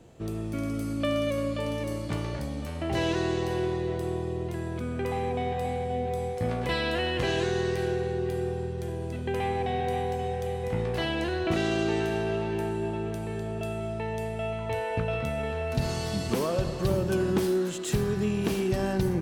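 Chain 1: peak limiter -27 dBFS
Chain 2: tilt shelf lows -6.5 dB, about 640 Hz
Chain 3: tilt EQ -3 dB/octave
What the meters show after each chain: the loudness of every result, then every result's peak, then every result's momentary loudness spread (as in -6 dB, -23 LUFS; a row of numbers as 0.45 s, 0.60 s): -35.0 LUFS, -30.0 LUFS, -24.0 LUFS; -27.0 dBFS, -11.0 dBFS, -6.0 dBFS; 2 LU, 9 LU, 6 LU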